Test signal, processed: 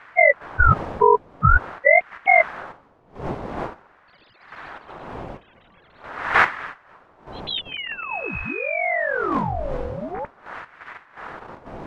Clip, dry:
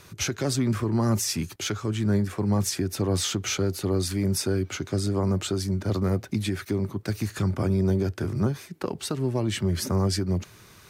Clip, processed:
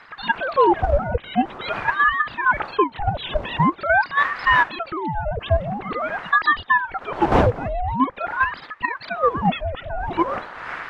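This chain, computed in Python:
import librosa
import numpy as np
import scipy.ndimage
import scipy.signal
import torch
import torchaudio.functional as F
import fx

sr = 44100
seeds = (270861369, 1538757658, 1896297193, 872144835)

p1 = fx.sine_speech(x, sr)
p2 = fx.dmg_wind(p1, sr, seeds[0], corner_hz=530.0, level_db=-36.0)
p3 = fx.level_steps(p2, sr, step_db=23)
p4 = p2 + (p3 * 10.0 ** (3.0 / 20.0))
p5 = fx.ring_lfo(p4, sr, carrier_hz=880.0, swing_pct=70, hz=0.46)
y = p5 * 10.0 ** (2.5 / 20.0)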